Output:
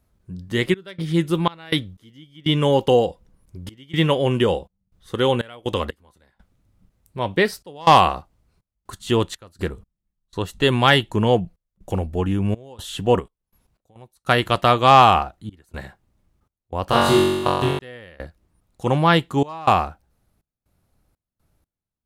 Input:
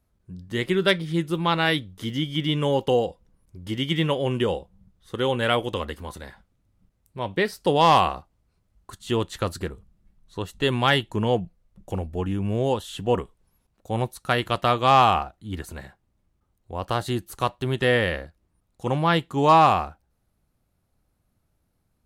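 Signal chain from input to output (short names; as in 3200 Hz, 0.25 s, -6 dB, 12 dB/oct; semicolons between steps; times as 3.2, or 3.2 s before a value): 13.19–13.96 compressor 6:1, threshold -35 dBFS, peak gain reduction 13 dB; step gate "xxx.xx.x..xxxxx." 61 bpm -24 dB; 16.85–17.79 flutter echo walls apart 3.7 m, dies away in 1.2 s; gain +5 dB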